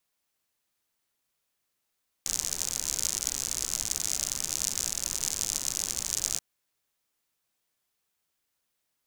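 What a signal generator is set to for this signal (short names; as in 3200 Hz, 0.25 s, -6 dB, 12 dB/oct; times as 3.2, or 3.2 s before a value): rain from filtered ticks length 4.13 s, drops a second 82, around 6600 Hz, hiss -12.5 dB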